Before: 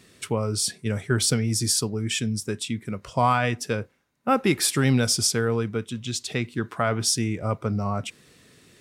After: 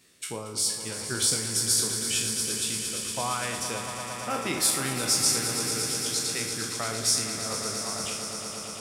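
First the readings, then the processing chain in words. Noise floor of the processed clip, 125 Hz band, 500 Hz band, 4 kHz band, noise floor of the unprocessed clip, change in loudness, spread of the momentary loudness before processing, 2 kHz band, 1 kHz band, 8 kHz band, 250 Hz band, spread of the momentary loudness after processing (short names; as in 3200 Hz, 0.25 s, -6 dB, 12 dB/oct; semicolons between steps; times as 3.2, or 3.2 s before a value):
-38 dBFS, -12.5 dB, -7.5 dB, +1.0 dB, -58 dBFS, -1.5 dB, 9 LU, -3.5 dB, -6.5 dB, +3.0 dB, -10.0 dB, 9 LU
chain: spectral trails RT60 0.59 s; low shelf 380 Hz -4.5 dB; de-hum 51.01 Hz, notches 33; harmonic-percussive split harmonic -5 dB; high shelf 4900 Hz +7.5 dB; on a send: swelling echo 0.115 s, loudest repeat 5, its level -11 dB; on the sum: gain -6.5 dB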